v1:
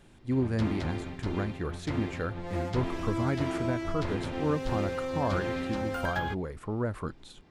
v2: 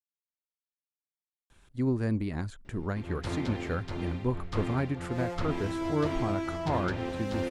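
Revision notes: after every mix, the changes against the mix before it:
speech: entry +1.50 s; background: entry +2.65 s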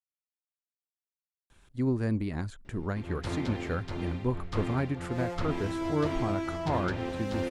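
no change

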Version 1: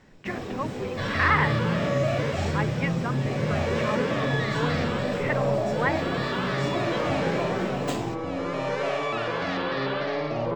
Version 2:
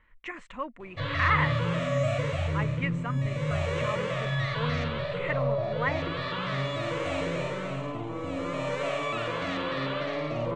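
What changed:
first sound: muted; reverb: off; master: add graphic EQ with 31 bands 200 Hz -7 dB, 400 Hz -10 dB, 800 Hz -10 dB, 1.6 kHz -6 dB, 5 kHz -10 dB, 8 kHz +7 dB, 12.5 kHz -11 dB

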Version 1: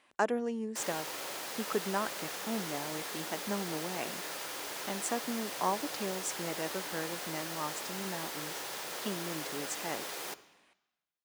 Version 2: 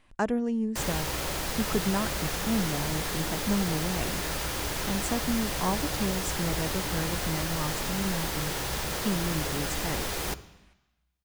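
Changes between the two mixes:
background +7.0 dB; master: remove high-pass 370 Hz 12 dB/octave

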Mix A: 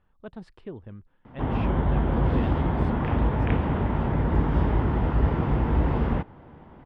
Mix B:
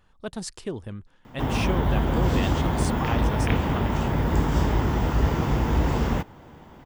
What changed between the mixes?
speech +5.5 dB; master: remove distance through air 460 m

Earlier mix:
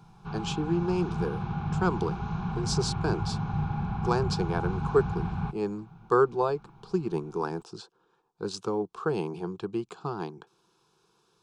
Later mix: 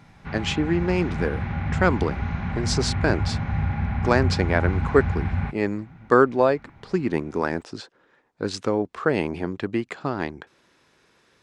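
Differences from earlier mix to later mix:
speech +3.5 dB; master: remove static phaser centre 390 Hz, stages 8

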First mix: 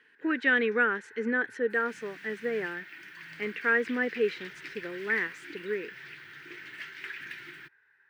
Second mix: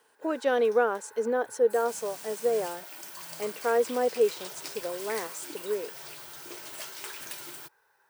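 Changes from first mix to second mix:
speech -5.5 dB; master: remove FFT filter 210 Hz 0 dB, 360 Hz -3 dB, 620 Hz -21 dB, 1.1 kHz -11 dB, 1.8 kHz +11 dB, 7.9 kHz -25 dB

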